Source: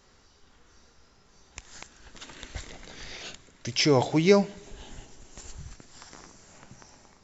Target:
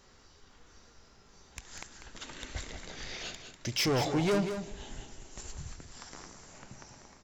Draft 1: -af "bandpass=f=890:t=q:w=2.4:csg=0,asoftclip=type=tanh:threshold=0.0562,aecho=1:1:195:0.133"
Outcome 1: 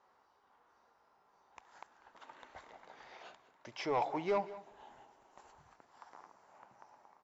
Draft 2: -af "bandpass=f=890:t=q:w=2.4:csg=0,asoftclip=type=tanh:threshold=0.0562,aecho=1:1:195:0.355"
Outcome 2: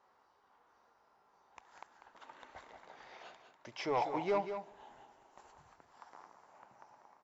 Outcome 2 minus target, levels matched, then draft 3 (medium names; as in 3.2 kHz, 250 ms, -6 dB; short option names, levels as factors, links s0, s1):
1 kHz band +3.0 dB
-af "asoftclip=type=tanh:threshold=0.0562,aecho=1:1:195:0.355"